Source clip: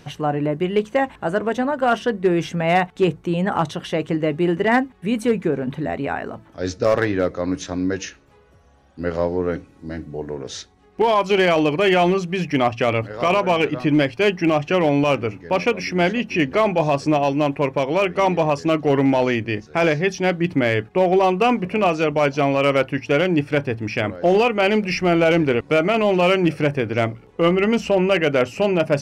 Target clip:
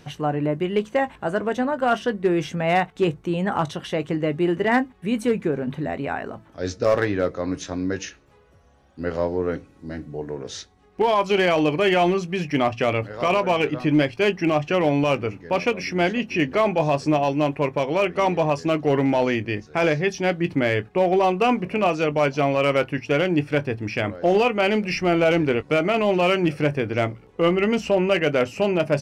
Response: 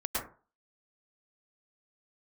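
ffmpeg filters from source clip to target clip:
-filter_complex "[0:a]asplit=2[a][b];[b]adelay=20,volume=-14dB[c];[a][c]amix=inputs=2:normalize=0,volume=-2.5dB"

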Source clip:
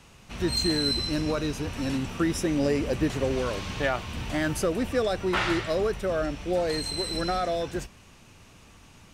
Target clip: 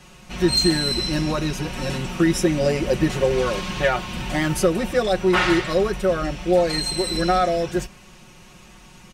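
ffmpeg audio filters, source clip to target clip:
-af "aecho=1:1:5.5:0.95,volume=3.5dB"

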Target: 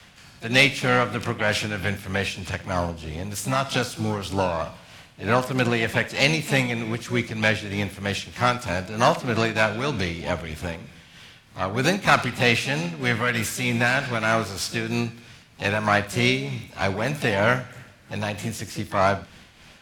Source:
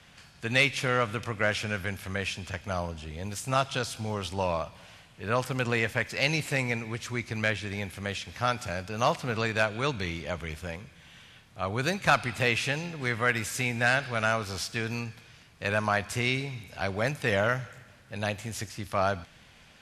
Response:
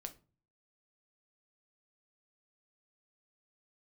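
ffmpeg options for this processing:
-filter_complex "[0:a]adynamicequalizer=threshold=0.00501:dfrequency=250:dqfactor=2.2:tfrequency=250:tqfactor=2.2:attack=5:release=100:ratio=0.375:range=2:mode=boostabove:tftype=bell,tremolo=f=3.2:d=0.49,acontrast=75,asplit=2[a][b];[b]asetrate=66075,aresample=44100,atempo=0.66742,volume=-9dB[c];[a][c]amix=inputs=2:normalize=0,asplit=2[d][e];[1:a]atrim=start_sample=2205,adelay=59[f];[e][f]afir=irnorm=-1:irlink=0,volume=-11dB[g];[d][g]amix=inputs=2:normalize=0"

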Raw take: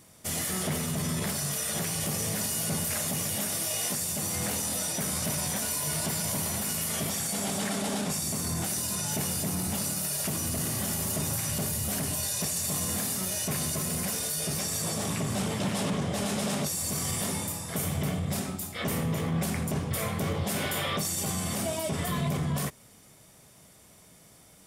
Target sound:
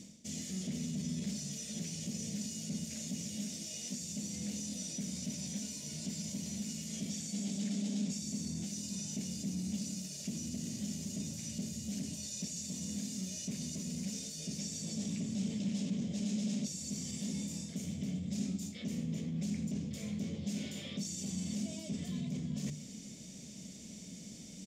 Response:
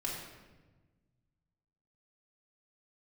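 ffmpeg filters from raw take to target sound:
-af "bandreject=f=50:t=h:w=6,bandreject=f=100:t=h:w=6,bandreject=f=150:t=h:w=6,areverse,acompressor=threshold=-45dB:ratio=8,areverse,firequalizer=gain_entry='entry(120,0);entry(210,15);entry(360,0);entry(560,-2);entry(810,-13);entry(1200,-17);entry(2300,0);entry(6800,9);entry(9900,-14)':delay=0.05:min_phase=1,volume=2dB"

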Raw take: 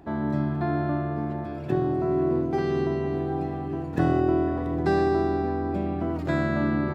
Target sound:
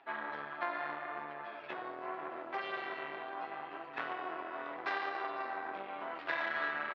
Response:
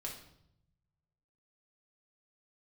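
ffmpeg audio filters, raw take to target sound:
-filter_complex "[0:a]flanger=delay=7.3:depth=9.7:regen=1:speed=0.75:shape=sinusoidal,aecho=1:1:157|314|471:0.0708|0.0333|0.0156,asplit=2[a][b];[1:a]atrim=start_sample=2205,atrim=end_sample=3087[c];[b][c]afir=irnorm=-1:irlink=0,volume=-11.5dB[d];[a][d]amix=inputs=2:normalize=0,asplit=3[e][f][g];[f]asetrate=22050,aresample=44100,atempo=2,volume=-16dB[h];[g]asetrate=33038,aresample=44100,atempo=1.33484,volume=-17dB[i];[e][h][i]amix=inputs=3:normalize=0,lowpass=f=3.4k:w=0.5412,lowpass=f=3.4k:w=1.3066,aeval=exprs='0.237*(cos(1*acos(clip(val(0)/0.237,-1,1)))-cos(1*PI/2))+0.119*(cos(2*acos(clip(val(0)/0.237,-1,1)))-cos(2*PI/2))+0.0133*(cos(6*acos(clip(val(0)/0.237,-1,1)))-cos(6*PI/2))':c=same,acompressor=threshold=-23dB:ratio=6,highpass=1.3k,volume=4dB"

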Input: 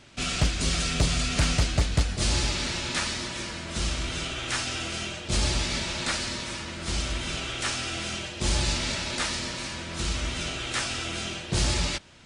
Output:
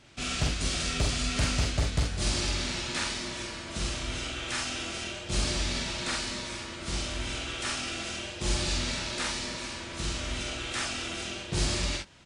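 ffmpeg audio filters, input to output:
-af "aecho=1:1:45|65:0.708|0.335,volume=-5dB"

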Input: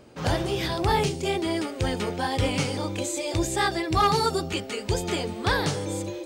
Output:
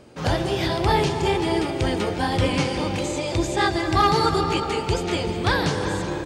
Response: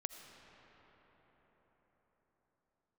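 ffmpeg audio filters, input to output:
-filter_complex "[0:a]acrossover=split=6300[a][b];[a]aecho=1:1:361:0.251[c];[b]acompressor=threshold=-49dB:ratio=6[d];[c][d]amix=inputs=2:normalize=0[e];[1:a]atrim=start_sample=2205,afade=t=out:st=0.44:d=0.01,atrim=end_sample=19845,asetrate=23814,aresample=44100[f];[e][f]afir=irnorm=-1:irlink=0,volume=2.5dB"

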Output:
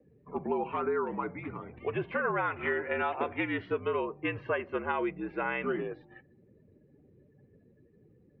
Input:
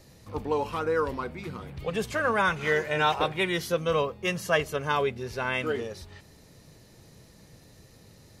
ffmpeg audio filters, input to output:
-af "acompressor=threshold=-26dB:ratio=10,afftdn=nr=24:nf=-51,highpass=f=200:t=q:w=0.5412,highpass=f=200:t=q:w=1.307,lowpass=f=2.7k:t=q:w=0.5176,lowpass=f=2.7k:t=q:w=0.7071,lowpass=f=2.7k:t=q:w=1.932,afreqshift=-61"

